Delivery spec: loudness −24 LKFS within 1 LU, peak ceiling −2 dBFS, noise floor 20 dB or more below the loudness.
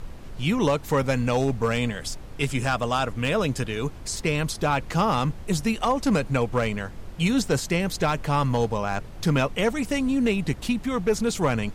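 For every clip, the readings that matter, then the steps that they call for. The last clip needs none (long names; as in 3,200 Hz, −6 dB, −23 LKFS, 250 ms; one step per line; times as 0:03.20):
share of clipped samples 0.4%; peaks flattened at −14.0 dBFS; background noise floor −40 dBFS; target noise floor −45 dBFS; integrated loudness −25.0 LKFS; sample peak −14.0 dBFS; target loudness −24.0 LKFS
→ clipped peaks rebuilt −14 dBFS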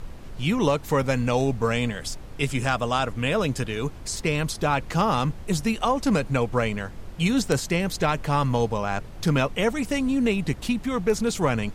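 share of clipped samples 0.0%; background noise floor −40 dBFS; target noise floor −45 dBFS
→ noise reduction from a noise print 6 dB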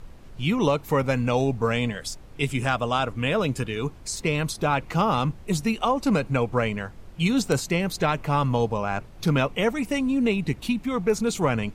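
background noise floor −45 dBFS; integrated loudness −25.0 LKFS; sample peak −7.0 dBFS; target loudness −24.0 LKFS
→ level +1 dB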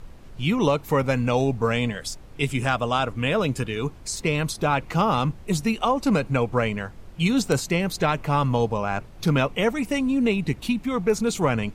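integrated loudness −24.0 LKFS; sample peak −6.0 dBFS; background noise floor −44 dBFS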